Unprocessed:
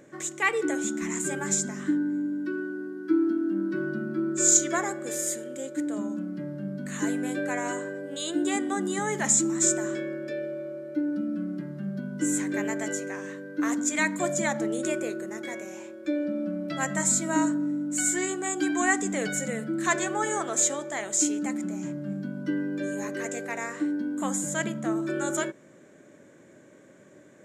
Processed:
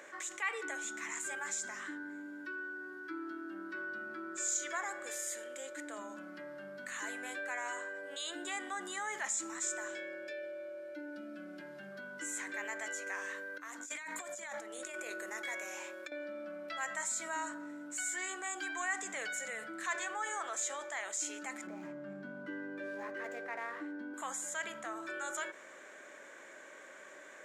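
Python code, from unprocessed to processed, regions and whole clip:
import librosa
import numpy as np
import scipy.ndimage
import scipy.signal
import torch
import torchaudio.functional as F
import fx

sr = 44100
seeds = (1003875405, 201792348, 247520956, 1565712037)

y = fx.chain(x, sr, fx.peak_eq(hz=1200.0, db=-14.0, octaves=0.25),
    fx.notch(hz=1900.0, q=8.6), at=(9.88, 11.92))
y = fx.chain(y, sr, fx.high_shelf(hz=9800.0, db=8.0),
    fx.over_compress(threshold_db=-32.0, ratio=-0.5), at=(13.06, 16.12))
y = fx.chain(y, sr, fx.median_filter(points=9),
    fx.tilt_eq(slope=-3.5), at=(21.67, 24.14))
y = scipy.signal.sosfilt(scipy.signal.butter(2, 1100.0, 'highpass', fs=sr, output='sos'), y)
y = fx.high_shelf(y, sr, hz=3400.0, db=-10.0)
y = fx.env_flatten(y, sr, amount_pct=50)
y = y * 10.0 ** (-8.5 / 20.0)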